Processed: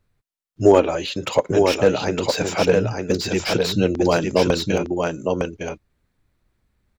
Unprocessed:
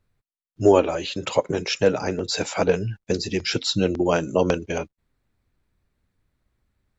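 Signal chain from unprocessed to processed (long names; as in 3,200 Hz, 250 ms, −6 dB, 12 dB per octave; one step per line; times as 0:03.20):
single-tap delay 909 ms −4.5 dB
slew-rate limiting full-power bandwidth 230 Hz
level +2.5 dB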